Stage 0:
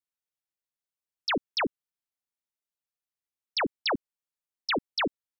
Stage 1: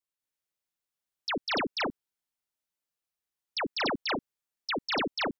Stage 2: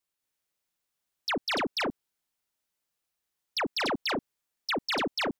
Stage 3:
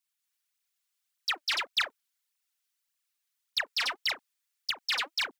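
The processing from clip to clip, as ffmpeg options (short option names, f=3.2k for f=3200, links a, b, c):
-filter_complex "[0:a]alimiter=level_in=2dB:limit=-24dB:level=0:latency=1,volume=-2dB,asplit=2[a][b];[b]aecho=0:1:198.3|233.2:0.891|0.794[c];[a][c]amix=inputs=2:normalize=0,volume=-1dB"
-filter_complex "[0:a]asplit=2[a][b];[b]alimiter=level_in=6.5dB:limit=-24dB:level=0:latency=1:release=18,volume=-6.5dB,volume=-1dB[c];[a][c]amix=inputs=2:normalize=0,asoftclip=type=tanh:threshold=-24dB"
-af "highpass=1.5k,aphaser=in_gain=1:out_gain=1:delay=4.5:decay=0.62:speed=1.7:type=triangular"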